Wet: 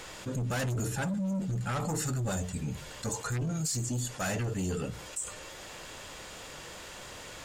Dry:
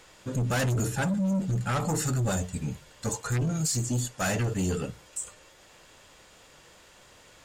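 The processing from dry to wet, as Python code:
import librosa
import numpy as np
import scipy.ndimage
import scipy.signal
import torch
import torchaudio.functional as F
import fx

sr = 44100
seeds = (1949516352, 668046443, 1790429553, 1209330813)

y = fx.env_flatten(x, sr, amount_pct=50)
y = y * 10.0 ** (-5.5 / 20.0)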